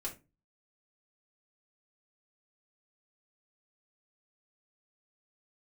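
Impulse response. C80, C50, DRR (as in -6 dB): 20.0 dB, 13.0 dB, -3.5 dB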